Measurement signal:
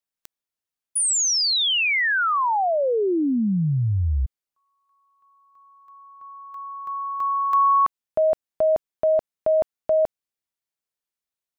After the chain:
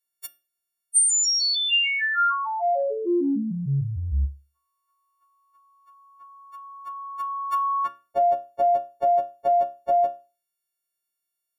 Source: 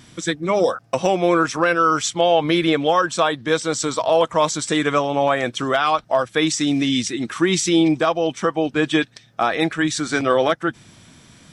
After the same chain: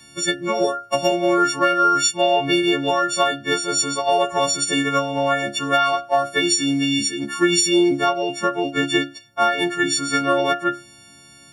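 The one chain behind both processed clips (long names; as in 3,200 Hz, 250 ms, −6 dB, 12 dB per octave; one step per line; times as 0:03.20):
every partial snapped to a pitch grid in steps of 4 semitones
tuned comb filter 70 Hz, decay 0.31 s, harmonics all, mix 70%
transient designer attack +5 dB, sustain 0 dB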